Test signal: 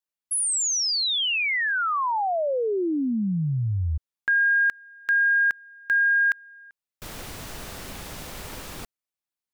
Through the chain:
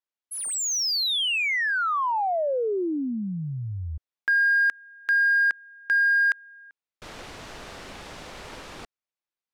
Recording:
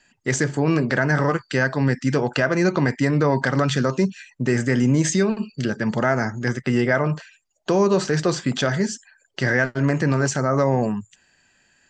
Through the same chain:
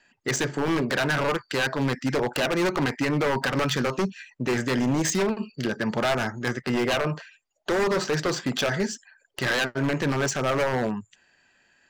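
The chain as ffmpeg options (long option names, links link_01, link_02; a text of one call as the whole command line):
ffmpeg -i in.wav -af "adynamicsmooth=sensitivity=2.5:basefreq=5200,bass=frequency=250:gain=-7,treble=frequency=4000:gain=1,aeval=exprs='0.133*(abs(mod(val(0)/0.133+3,4)-2)-1)':channel_layout=same" out.wav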